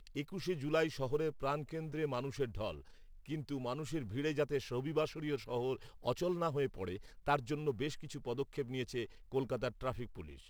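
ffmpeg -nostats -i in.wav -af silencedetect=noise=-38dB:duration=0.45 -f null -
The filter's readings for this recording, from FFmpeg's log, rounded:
silence_start: 2.72
silence_end: 3.30 | silence_duration: 0.58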